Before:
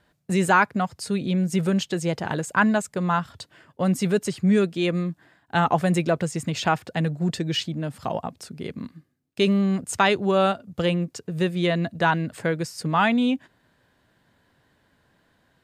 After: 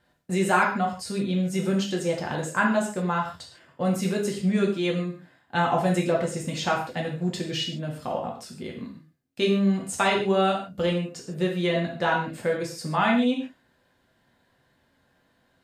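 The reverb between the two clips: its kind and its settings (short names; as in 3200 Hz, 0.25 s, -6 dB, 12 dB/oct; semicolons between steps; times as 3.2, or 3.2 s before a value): non-linear reverb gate 0.18 s falling, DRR -1.5 dB; gain -5.5 dB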